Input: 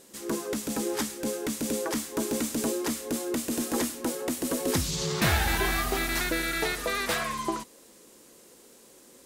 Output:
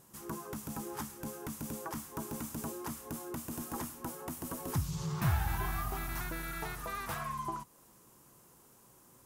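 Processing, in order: graphic EQ 125/250/500/1000/2000/4000/8000 Hz +10/-8/-12/+5/-8/-11/-7 dB; in parallel at +2 dB: compressor, threshold -42 dBFS, peak gain reduction 21 dB; on the sum: gain -7.5 dB

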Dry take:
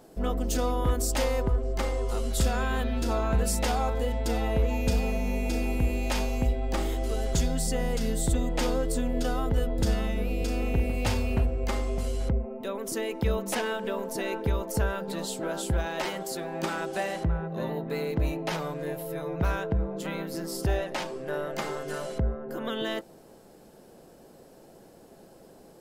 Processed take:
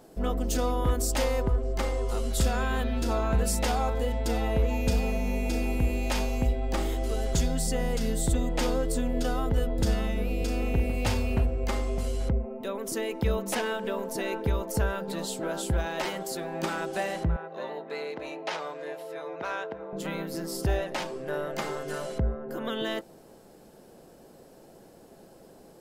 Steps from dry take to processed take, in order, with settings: 17.36–19.93 BPF 480–6200 Hz

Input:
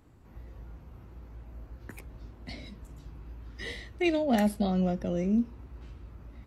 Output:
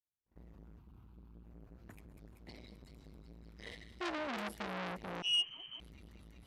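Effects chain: gate -49 dBFS, range -45 dB; 0.79–1.45 fixed phaser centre 1900 Hz, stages 6; thin delay 0.192 s, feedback 85%, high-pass 2400 Hz, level -11 dB; 5.22–5.8 inverted band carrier 3100 Hz; core saturation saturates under 3300 Hz; gain -6 dB

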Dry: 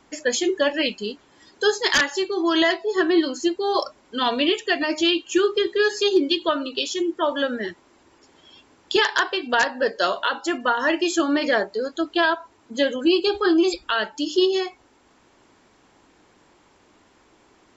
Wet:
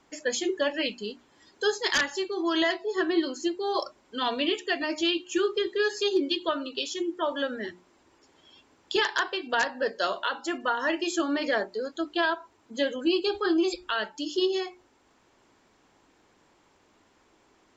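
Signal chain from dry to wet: notches 60/120/180/240/300/360 Hz; gain -6 dB; SBC 192 kbps 32000 Hz

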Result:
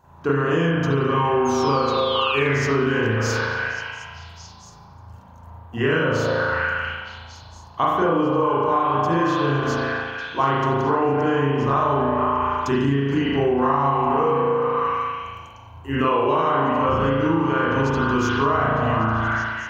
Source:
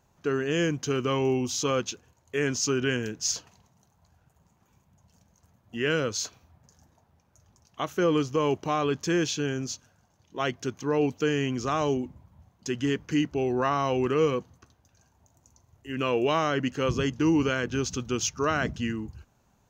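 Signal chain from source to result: fifteen-band EQ 100 Hz +8 dB, 1000 Hz +11 dB, 2500 Hz -4 dB, 6300 Hz -7 dB; delay with a stepping band-pass 0.23 s, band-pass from 670 Hz, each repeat 0.7 oct, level -3 dB; painted sound fall, 1.45–2.58, 1800–6600 Hz -34 dBFS; spring tank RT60 1.2 s, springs 36 ms, chirp 55 ms, DRR -9.5 dB; compressor 10:1, threshold -21 dBFS, peak gain reduction 15.5 dB; gain +4.5 dB

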